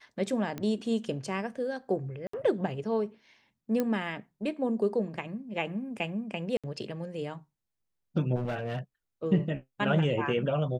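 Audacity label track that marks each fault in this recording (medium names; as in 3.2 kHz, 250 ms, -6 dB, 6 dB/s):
0.580000	0.580000	pop -22 dBFS
2.270000	2.330000	dropout 64 ms
3.800000	3.800000	pop -16 dBFS
6.570000	6.640000	dropout 66 ms
8.350000	8.790000	clipped -28.5 dBFS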